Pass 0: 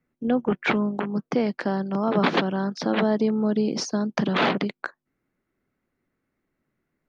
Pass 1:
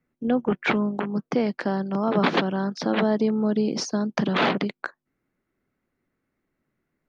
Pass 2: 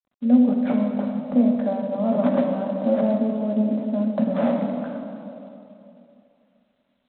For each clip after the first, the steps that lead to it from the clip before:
no audible change
two resonant band-passes 380 Hz, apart 1.2 oct; reverberation RT60 2.9 s, pre-delay 5 ms, DRR 0.5 dB; trim +6.5 dB; G.726 24 kbps 8 kHz

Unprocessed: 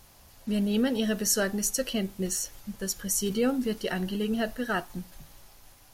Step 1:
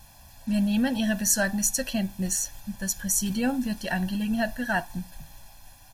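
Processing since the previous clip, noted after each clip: comb 1.2 ms, depth 97%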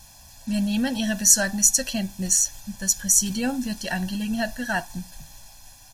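peaking EQ 6.4 kHz +9 dB 1.4 oct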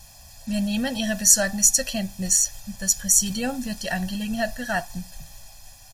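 comb 1.6 ms, depth 41%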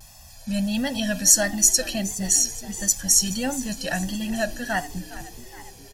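frequency-shifting echo 417 ms, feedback 61%, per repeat +54 Hz, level -16 dB; vibrato 1.5 Hz 64 cents

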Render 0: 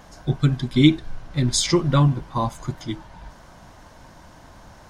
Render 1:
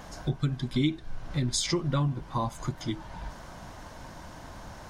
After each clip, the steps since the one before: compression 2.5:1, threshold -32 dBFS, peak gain reduction 15.5 dB; trim +2 dB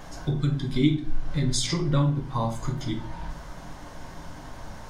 simulated room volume 44 m³, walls mixed, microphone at 0.48 m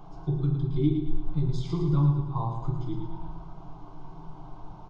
tape spacing loss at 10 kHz 38 dB; static phaser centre 360 Hz, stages 8; on a send: feedback delay 111 ms, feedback 51%, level -7 dB

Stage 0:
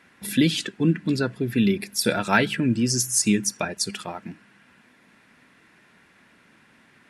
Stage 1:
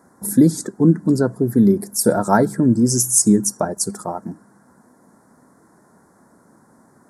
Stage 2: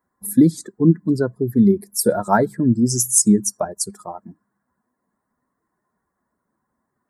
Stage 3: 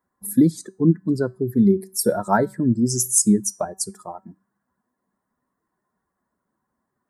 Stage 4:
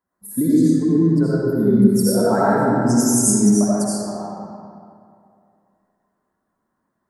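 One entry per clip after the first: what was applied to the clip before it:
Chebyshev band-stop 940–7700 Hz, order 2; bass shelf 72 Hz -7 dB; trim +8.5 dB
expander on every frequency bin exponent 1.5; trim +1 dB
feedback comb 190 Hz, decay 0.34 s, harmonics all, mix 40%; trim +1.5 dB
algorithmic reverb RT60 2.4 s, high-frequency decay 0.65×, pre-delay 40 ms, DRR -9.5 dB; trim -6 dB

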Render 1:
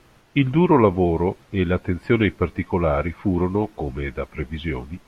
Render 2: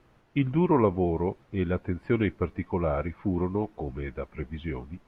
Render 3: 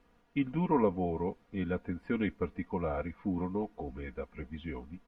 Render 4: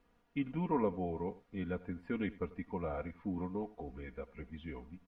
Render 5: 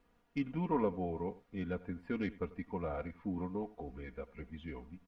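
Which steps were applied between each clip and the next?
treble shelf 3.1 kHz -11.5 dB; trim -6.5 dB
comb 4.2 ms, depth 70%; trim -7 dB
delay 92 ms -19.5 dB; trim -5 dB
tracing distortion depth 0.04 ms

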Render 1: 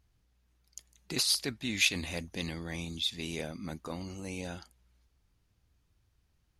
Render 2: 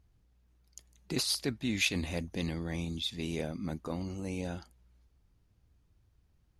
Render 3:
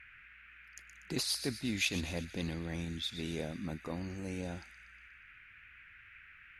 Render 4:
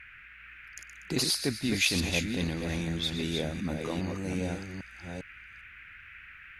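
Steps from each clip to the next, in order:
tilt shelf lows +4 dB
band noise 1.4–2.6 kHz -54 dBFS; feedback echo behind a high-pass 120 ms, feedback 55%, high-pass 2.9 kHz, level -10 dB; trim -3 dB
chunks repeated in reverse 401 ms, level -5 dB; trim +6 dB

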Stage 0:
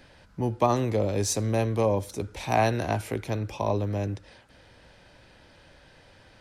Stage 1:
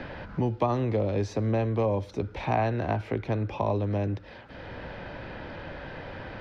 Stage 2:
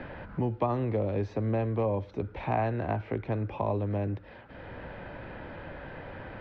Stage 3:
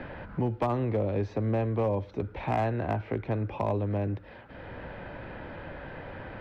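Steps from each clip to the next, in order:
distance through air 250 m; three bands compressed up and down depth 70%
low-pass 2.7 kHz 12 dB/octave; trim -2.5 dB
hard clipper -21 dBFS, distortion -23 dB; trim +1 dB

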